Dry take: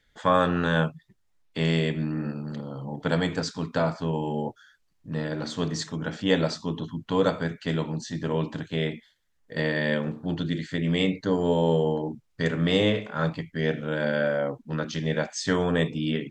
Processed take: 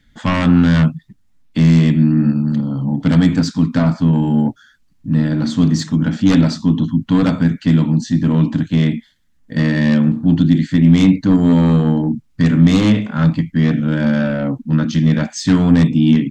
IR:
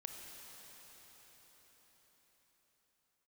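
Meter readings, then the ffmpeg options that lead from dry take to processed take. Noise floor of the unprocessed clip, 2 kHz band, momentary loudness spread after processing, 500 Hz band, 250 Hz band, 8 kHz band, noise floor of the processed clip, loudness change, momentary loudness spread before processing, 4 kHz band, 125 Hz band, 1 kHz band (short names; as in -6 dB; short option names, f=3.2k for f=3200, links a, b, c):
-69 dBFS, +4.0 dB, 7 LU, +0.5 dB, +16.0 dB, n/a, -55 dBFS, +12.5 dB, 9 LU, +4.0 dB, +15.0 dB, +3.0 dB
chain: -af "aeval=exprs='0.447*sin(PI/2*3.16*val(0)/0.447)':c=same,lowshelf=f=330:t=q:w=3:g=7.5,volume=-7dB"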